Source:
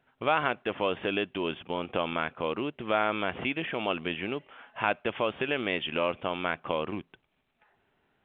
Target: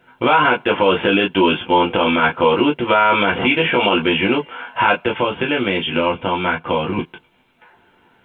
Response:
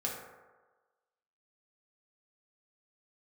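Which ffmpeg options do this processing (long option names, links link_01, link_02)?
-filter_complex "[1:a]atrim=start_sample=2205,atrim=end_sample=3528,asetrate=83790,aresample=44100[link_01];[0:a][link_01]afir=irnorm=-1:irlink=0,asettb=1/sr,asplit=3[link_02][link_03][link_04];[link_02]atrim=end=4.954[link_05];[link_03]atrim=start=4.95:end=6.99,asetpts=PTS-STARTPTS,afade=type=in:duration=0.004:curve=qsin,afade=type=out:start_time=2.036:duration=0.004:curve=qsin,acrossover=split=210[link_06][link_07];[link_07]acompressor=threshold=-48dB:ratio=1.5[link_08];[link_06][link_08]amix=inputs=2:normalize=0[link_09];[link_04]atrim=start=6.986[link_10];[link_05][link_09]acrossfade=duration=0.004:curve1=hsin:curve2=qsin[link_11];[link_11][link_10]acrossfade=duration=0.004:curve1=qsin:curve2=hsin,alimiter=level_in=23.5dB:limit=-1dB:release=50:level=0:latency=1,volume=-3.5dB"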